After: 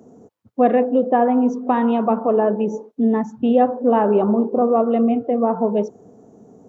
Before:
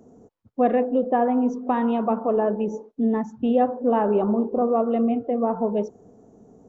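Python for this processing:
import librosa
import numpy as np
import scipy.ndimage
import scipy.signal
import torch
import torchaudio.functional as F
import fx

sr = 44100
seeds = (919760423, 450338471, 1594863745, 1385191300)

y = scipy.signal.sosfilt(scipy.signal.butter(2, 98.0, 'highpass', fs=sr, output='sos'), x)
y = y * librosa.db_to_amplitude(4.5)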